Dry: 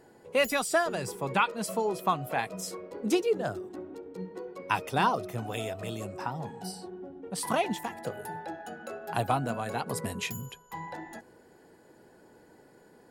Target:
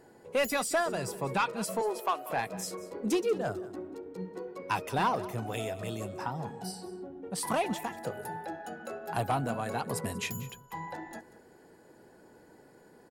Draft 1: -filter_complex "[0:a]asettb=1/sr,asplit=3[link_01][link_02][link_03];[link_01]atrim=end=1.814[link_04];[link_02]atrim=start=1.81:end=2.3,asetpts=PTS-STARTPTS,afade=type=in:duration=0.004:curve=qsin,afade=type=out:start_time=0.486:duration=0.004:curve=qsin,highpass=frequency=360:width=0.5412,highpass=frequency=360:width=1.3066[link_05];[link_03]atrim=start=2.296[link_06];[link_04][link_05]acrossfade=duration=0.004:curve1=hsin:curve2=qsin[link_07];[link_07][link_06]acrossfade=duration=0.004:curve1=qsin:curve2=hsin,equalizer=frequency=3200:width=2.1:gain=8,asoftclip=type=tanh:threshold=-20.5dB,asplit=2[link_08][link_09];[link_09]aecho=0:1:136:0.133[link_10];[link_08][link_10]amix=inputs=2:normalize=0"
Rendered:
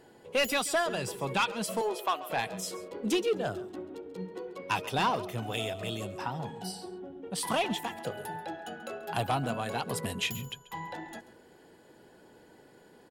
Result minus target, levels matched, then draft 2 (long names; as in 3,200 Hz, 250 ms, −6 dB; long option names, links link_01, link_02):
4,000 Hz band +5.5 dB; echo 52 ms early
-filter_complex "[0:a]asettb=1/sr,asplit=3[link_01][link_02][link_03];[link_01]atrim=end=1.814[link_04];[link_02]atrim=start=1.81:end=2.3,asetpts=PTS-STARTPTS,afade=type=in:duration=0.004:curve=qsin,afade=type=out:start_time=0.486:duration=0.004:curve=qsin,highpass=frequency=360:width=0.5412,highpass=frequency=360:width=1.3066[link_05];[link_03]atrim=start=2.296[link_06];[link_04][link_05]acrossfade=duration=0.004:curve1=hsin:curve2=qsin[link_07];[link_07][link_06]acrossfade=duration=0.004:curve1=qsin:curve2=hsin,equalizer=frequency=3200:width=2.1:gain=-2,asoftclip=type=tanh:threshold=-20.5dB,asplit=2[link_08][link_09];[link_09]aecho=0:1:188:0.133[link_10];[link_08][link_10]amix=inputs=2:normalize=0"